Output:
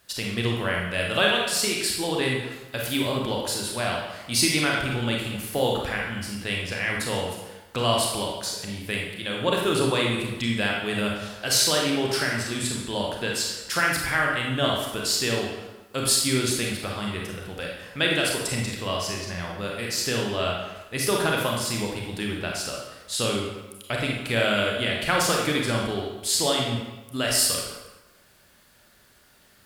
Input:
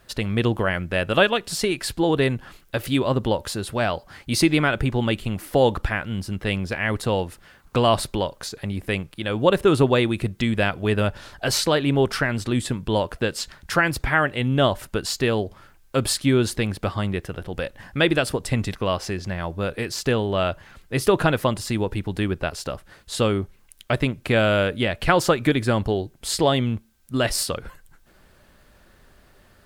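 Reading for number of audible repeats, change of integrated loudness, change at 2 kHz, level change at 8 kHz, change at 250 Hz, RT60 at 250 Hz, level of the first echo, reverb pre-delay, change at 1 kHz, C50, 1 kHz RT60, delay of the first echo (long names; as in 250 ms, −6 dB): no echo audible, −2.0 dB, −0.5 dB, +5.5 dB, −5.0 dB, 1.1 s, no echo audible, 27 ms, −3.0 dB, 1.0 dB, 1.1 s, no echo audible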